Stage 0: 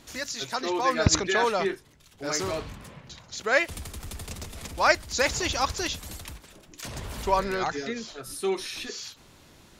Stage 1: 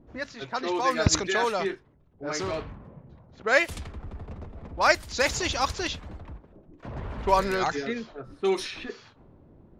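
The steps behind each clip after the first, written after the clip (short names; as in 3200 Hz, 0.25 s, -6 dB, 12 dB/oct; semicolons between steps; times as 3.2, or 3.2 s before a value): vocal rider within 3 dB 2 s; low-pass opened by the level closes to 440 Hz, open at -21.5 dBFS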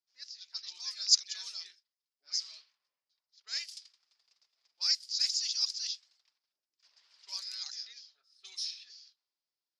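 ladder band-pass 5300 Hz, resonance 75%; gain +5 dB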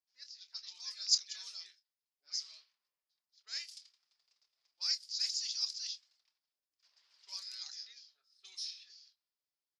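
doubler 27 ms -11.5 dB; gain -5 dB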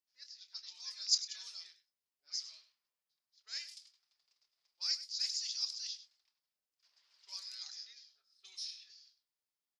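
echo 0.1 s -14 dB; gain -1.5 dB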